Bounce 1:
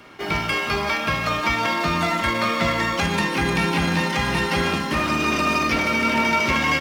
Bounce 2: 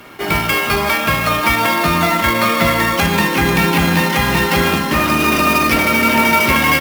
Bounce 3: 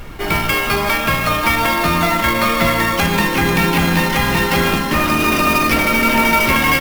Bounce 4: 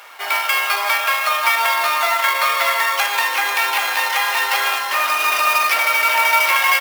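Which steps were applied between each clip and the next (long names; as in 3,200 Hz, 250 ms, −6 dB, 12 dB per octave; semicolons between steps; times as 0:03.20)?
sample-rate reduction 16,000 Hz, jitter 20%; level +7 dB
background noise brown −29 dBFS; level −1 dB
high-pass filter 690 Hz 24 dB per octave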